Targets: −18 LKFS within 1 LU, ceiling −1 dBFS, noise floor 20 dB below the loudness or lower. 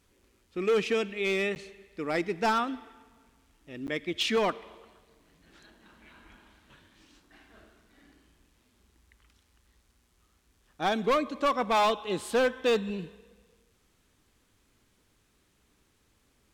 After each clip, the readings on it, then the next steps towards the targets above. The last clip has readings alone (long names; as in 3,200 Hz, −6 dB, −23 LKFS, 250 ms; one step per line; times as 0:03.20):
share of clipped samples 1.0%; peaks flattened at −20.5 dBFS; number of dropouts 2; longest dropout 9.6 ms; integrated loudness −29.0 LKFS; sample peak −20.5 dBFS; target loudness −18.0 LKFS
→ clipped peaks rebuilt −20.5 dBFS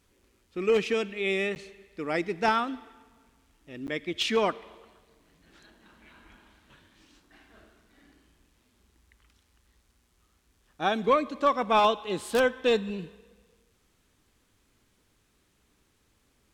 share of clipped samples 0.0%; number of dropouts 2; longest dropout 9.6 ms
→ repair the gap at 0:01.55/0:03.87, 9.6 ms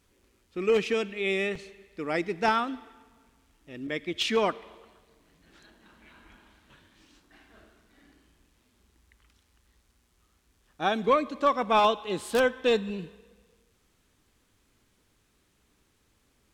number of dropouts 0; integrated loudness −27.5 LKFS; sample peak −11.5 dBFS; target loudness −18.0 LKFS
→ level +9.5 dB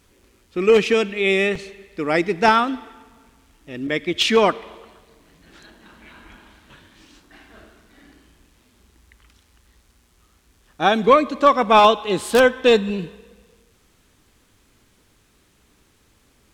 integrated loudness −18.0 LKFS; sample peak −2.0 dBFS; background noise floor −60 dBFS